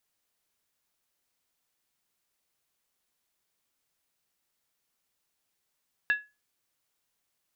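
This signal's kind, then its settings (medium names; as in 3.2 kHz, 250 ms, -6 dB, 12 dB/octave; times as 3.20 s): skin hit, lowest mode 1.69 kHz, decay 0.25 s, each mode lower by 10.5 dB, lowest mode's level -18.5 dB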